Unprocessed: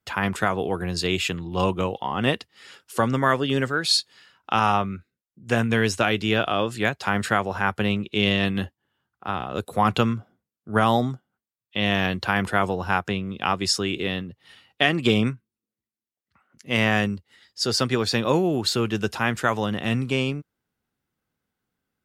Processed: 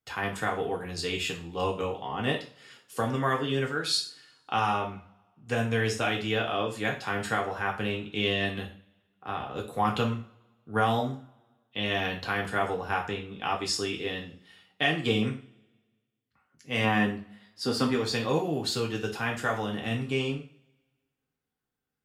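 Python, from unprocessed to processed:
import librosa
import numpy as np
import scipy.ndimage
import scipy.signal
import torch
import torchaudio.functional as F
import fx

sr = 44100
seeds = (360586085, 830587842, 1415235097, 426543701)

y = fx.graphic_eq_15(x, sr, hz=(250, 1000, 6300), db=(9, 7, -8), at=(16.84, 17.93))
y = fx.rev_double_slope(y, sr, seeds[0], early_s=0.37, late_s=1.5, knee_db=-27, drr_db=-0.5)
y = F.gain(torch.from_numpy(y), -9.0).numpy()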